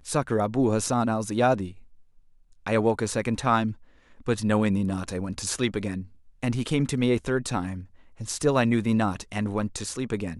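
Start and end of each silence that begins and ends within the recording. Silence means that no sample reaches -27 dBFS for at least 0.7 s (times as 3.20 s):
1.66–2.67 s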